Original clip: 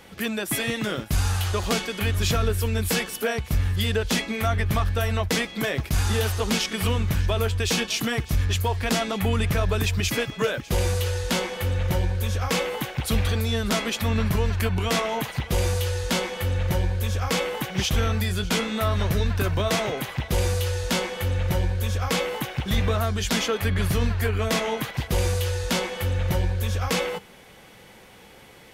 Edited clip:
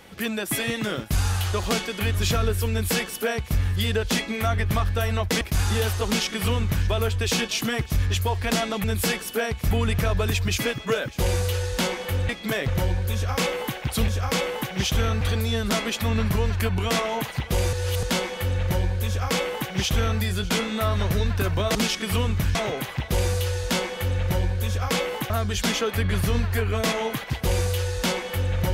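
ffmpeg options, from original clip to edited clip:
-filter_complex "[0:a]asplit=13[a][b][c][d][e][f][g][h][i][j][k][l][m];[a]atrim=end=5.412[n];[b]atrim=start=5.798:end=9.232[o];[c]atrim=start=2.708:end=3.582[p];[d]atrim=start=9.228:end=11.812[q];[e]atrim=start=5.408:end=5.802[r];[f]atrim=start=11.808:end=13.212[s];[g]atrim=start=17.068:end=18.202[t];[h]atrim=start=13.208:end=15.732[u];[i]atrim=start=15.728:end=16.032,asetpts=PTS-STARTPTS,areverse[v];[j]atrim=start=16.028:end=19.752[w];[k]atrim=start=6.458:end=7.262[x];[l]atrim=start=19.748:end=22.502[y];[m]atrim=start=22.968[z];[n][o]acrossfade=d=0.004:c1=hsin:c2=hsin[aa];[aa][p]acrossfade=d=0.004:c1=hsin:c2=hsin[ab];[ab][q]acrossfade=d=0.004:c1=hsin:c2=hsin[ac];[ac][r]acrossfade=d=0.004:c1=hsin:c2=hsin[ad];[ad][s]acrossfade=d=0.004:c1=hsin:c2=hsin[ae];[ae][t]acrossfade=d=0.004:c1=hsin:c2=hsin[af];[af][u]acrossfade=d=0.004:c1=hsin:c2=hsin[ag];[ag][v]acrossfade=d=0.004:c1=hsin:c2=hsin[ah];[ah][w]acrossfade=d=0.004:c1=hsin:c2=hsin[ai];[ai][x]acrossfade=d=0.004:c1=hsin:c2=hsin[aj];[aj][y]acrossfade=d=0.004:c1=hsin:c2=hsin[ak];[ak][z]acrossfade=d=0.004:c1=hsin:c2=hsin"

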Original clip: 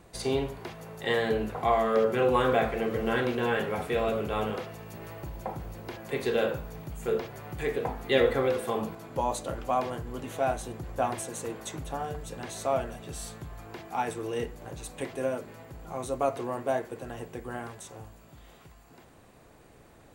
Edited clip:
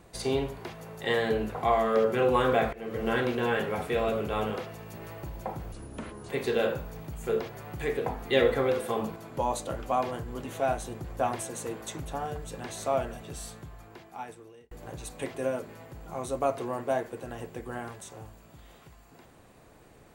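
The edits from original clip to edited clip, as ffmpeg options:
-filter_complex "[0:a]asplit=5[a][b][c][d][e];[a]atrim=end=2.73,asetpts=PTS-STARTPTS,afade=t=out:st=2.726:d=0.004:c=hsin:silence=0.0944061[f];[b]atrim=start=2.73:end=5.724,asetpts=PTS-STARTPTS,afade=t=in:d=0.35:silence=0.0944061[g];[c]atrim=start=5.72:end=6.08,asetpts=PTS-STARTPTS,asetrate=27783,aresample=44100[h];[d]atrim=start=6.076:end=14.5,asetpts=PTS-STARTPTS,afade=t=out:st=6.894:d=1.53[i];[e]atrim=start=14.5,asetpts=PTS-STARTPTS,afade=t=in:d=0.004:c=hsin[j];[f][g]concat=n=2:v=0:a=1[k];[k][h]acrossfade=d=0.004:c1=hsin:c2=hsin[l];[i][j]concat=n=2:v=0:a=1[m];[l][m]acrossfade=d=0.004:c1=hsin:c2=hsin"

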